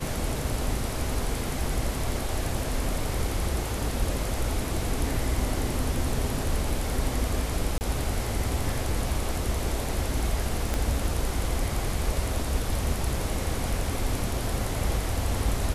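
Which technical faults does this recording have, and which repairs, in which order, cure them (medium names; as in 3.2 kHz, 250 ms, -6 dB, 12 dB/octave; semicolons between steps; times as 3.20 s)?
7.78–7.81 s: dropout 29 ms
10.74 s: pop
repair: de-click; interpolate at 7.78 s, 29 ms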